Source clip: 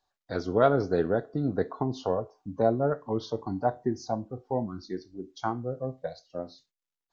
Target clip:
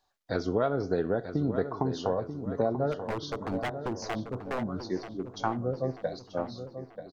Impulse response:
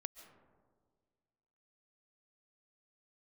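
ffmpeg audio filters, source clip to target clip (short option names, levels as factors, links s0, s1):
-filter_complex "[0:a]acompressor=threshold=0.0398:ratio=4,asplit=3[s0][s1][s2];[s0]afade=t=out:st=2.91:d=0.02[s3];[s1]aeval=exprs='0.0335*(abs(mod(val(0)/0.0335+3,4)-2)-1)':c=same,afade=t=in:st=2.91:d=0.02,afade=t=out:st=4.61:d=0.02[s4];[s2]afade=t=in:st=4.61:d=0.02[s5];[s3][s4][s5]amix=inputs=3:normalize=0,asplit=2[s6][s7];[s7]adelay=936,lowpass=f=3600:p=1,volume=0.316,asplit=2[s8][s9];[s9]adelay=936,lowpass=f=3600:p=1,volume=0.5,asplit=2[s10][s11];[s11]adelay=936,lowpass=f=3600:p=1,volume=0.5,asplit=2[s12][s13];[s13]adelay=936,lowpass=f=3600:p=1,volume=0.5,asplit=2[s14][s15];[s15]adelay=936,lowpass=f=3600:p=1,volume=0.5[s16];[s8][s10][s12][s14][s16]amix=inputs=5:normalize=0[s17];[s6][s17]amix=inputs=2:normalize=0,volume=1.5"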